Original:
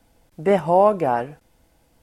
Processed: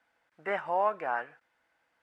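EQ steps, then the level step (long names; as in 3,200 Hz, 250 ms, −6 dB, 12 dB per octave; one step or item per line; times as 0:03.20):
resonant band-pass 1,600 Hz, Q 2.2
0.0 dB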